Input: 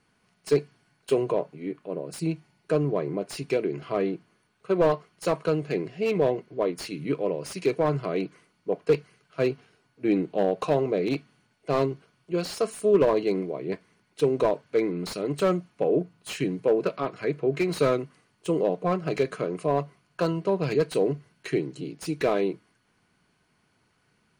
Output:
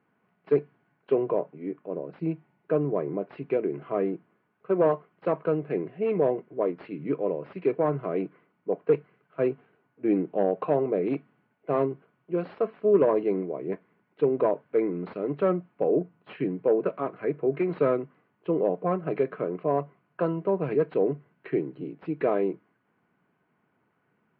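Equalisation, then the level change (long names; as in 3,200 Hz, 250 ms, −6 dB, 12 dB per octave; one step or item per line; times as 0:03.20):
Gaussian smoothing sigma 4.1 samples
high-pass filter 160 Hz 12 dB per octave
0.0 dB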